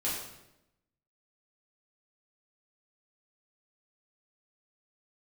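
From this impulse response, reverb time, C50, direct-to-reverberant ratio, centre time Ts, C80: 0.90 s, 2.0 dB, -8.0 dB, 57 ms, 4.5 dB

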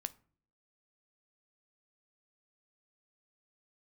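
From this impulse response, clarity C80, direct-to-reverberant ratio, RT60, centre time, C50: 26.0 dB, 13.0 dB, 0.50 s, 2 ms, 21.0 dB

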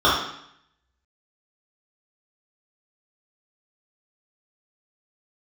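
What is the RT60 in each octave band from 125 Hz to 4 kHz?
0.80 s, 0.80 s, 0.70 s, 0.75 s, 0.75 s, 0.75 s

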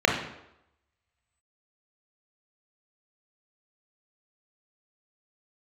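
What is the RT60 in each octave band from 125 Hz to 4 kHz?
0.70 s, 0.75 s, 0.85 s, 0.85 s, 0.75 s, 0.65 s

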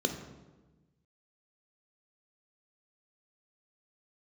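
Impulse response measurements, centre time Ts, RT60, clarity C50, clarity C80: 21 ms, 1.2 s, 9.0 dB, 10.5 dB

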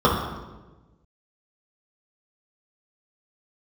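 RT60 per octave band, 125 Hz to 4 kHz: 1.7 s, 1.4 s, 1.3 s, 1.0 s, 0.95 s, 0.85 s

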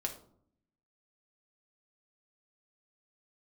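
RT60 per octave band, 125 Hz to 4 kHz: 1.0 s, 1.0 s, 0.65 s, 0.55 s, 0.35 s, 0.35 s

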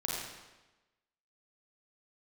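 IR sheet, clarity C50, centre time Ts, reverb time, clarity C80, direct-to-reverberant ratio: -2.0 dB, 86 ms, 1.1 s, 1.0 dB, -4.5 dB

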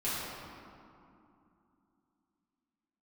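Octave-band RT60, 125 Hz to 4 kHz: 3.2 s, 3.8 s, 2.6 s, 2.8 s, 2.0 s, 1.3 s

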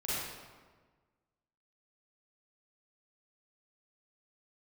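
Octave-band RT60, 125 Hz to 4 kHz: 1.7 s, 1.6 s, 1.5 s, 1.4 s, 1.2 s, 0.95 s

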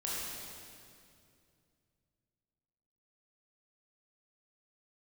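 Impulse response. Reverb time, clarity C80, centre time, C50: 2.4 s, -1.5 dB, 153 ms, -3.5 dB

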